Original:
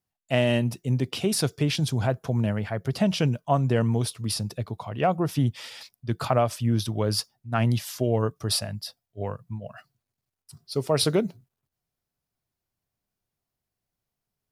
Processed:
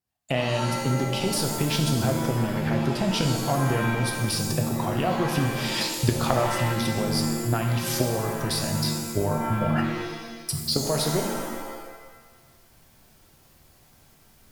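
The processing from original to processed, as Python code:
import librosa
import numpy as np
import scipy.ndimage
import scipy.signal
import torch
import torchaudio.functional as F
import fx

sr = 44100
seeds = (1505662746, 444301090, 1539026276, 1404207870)

y = fx.diode_clip(x, sr, knee_db=-19.5)
y = fx.recorder_agc(y, sr, target_db=-14.0, rise_db_per_s=52.0, max_gain_db=30)
y = fx.rev_shimmer(y, sr, seeds[0], rt60_s=1.2, semitones=7, shimmer_db=-2, drr_db=3.0)
y = y * 10.0 ** (-4.0 / 20.0)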